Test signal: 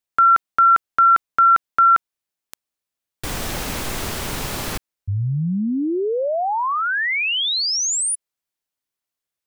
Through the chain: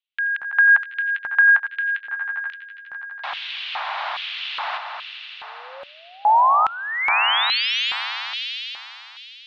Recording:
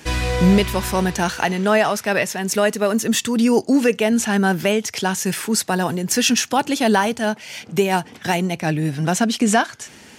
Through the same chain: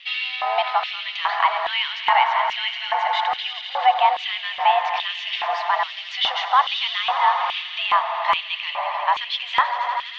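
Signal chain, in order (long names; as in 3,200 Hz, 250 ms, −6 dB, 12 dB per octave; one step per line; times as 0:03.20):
in parallel at −2.5 dB: brickwall limiter −14 dBFS
on the sum: single-sideband voice off tune +270 Hz 400–3,600 Hz
echo that builds up and dies away 82 ms, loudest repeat 5, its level −13.5 dB
auto-filter high-pass square 1.2 Hz 850–2,900 Hz
level −5.5 dB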